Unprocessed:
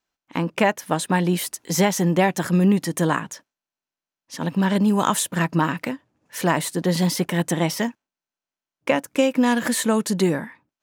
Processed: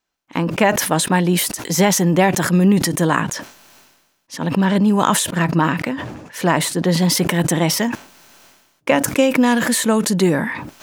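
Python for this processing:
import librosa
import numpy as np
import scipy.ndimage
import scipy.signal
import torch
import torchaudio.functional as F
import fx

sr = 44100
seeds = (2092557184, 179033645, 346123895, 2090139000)

y = fx.high_shelf(x, sr, hz=6700.0, db=-6.5, at=(4.37, 7.12))
y = fx.sustainer(y, sr, db_per_s=49.0)
y = y * librosa.db_to_amplitude(3.5)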